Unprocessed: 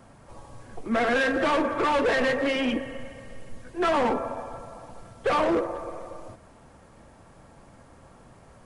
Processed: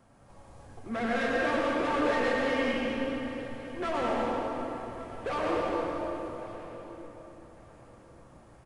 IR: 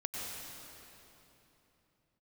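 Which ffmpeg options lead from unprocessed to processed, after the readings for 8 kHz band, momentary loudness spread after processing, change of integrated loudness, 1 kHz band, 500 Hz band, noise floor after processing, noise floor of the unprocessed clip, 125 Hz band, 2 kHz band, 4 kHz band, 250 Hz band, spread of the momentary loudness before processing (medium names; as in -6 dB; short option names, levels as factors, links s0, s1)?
-5.0 dB, 16 LU, -5.5 dB, -4.5 dB, -3.5 dB, -55 dBFS, -53 dBFS, -2.0 dB, -4.5 dB, -5.0 dB, -3.5 dB, 19 LU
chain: -filter_complex "[0:a]asplit=2[s0][s1];[s1]adelay=1152,lowpass=f=4800:p=1,volume=0.141,asplit=2[s2][s3];[s3]adelay=1152,lowpass=f=4800:p=1,volume=0.26[s4];[s0][s2][s4]amix=inputs=3:normalize=0[s5];[1:a]atrim=start_sample=2205[s6];[s5][s6]afir=irnorm=-1:irlink=0,volume=0.447"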